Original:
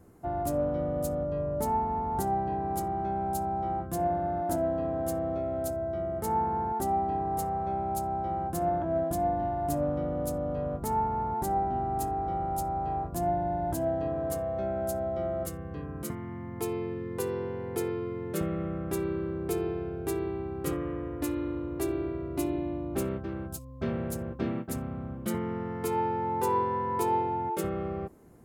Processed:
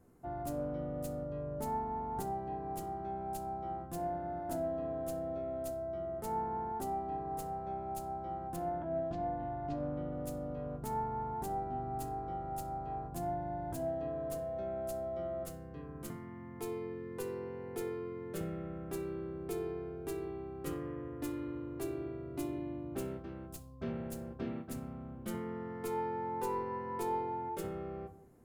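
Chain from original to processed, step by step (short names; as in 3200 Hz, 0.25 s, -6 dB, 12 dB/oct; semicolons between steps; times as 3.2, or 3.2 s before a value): tracing distortion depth 0.021 ms; 8.56–10.12 LPF 4300 Hz 24 dB/oct; on a send: reverb RT60 0.60 s, pre-delay 4 ms, DRR 8 dB; on the sum: gain -8.5 dB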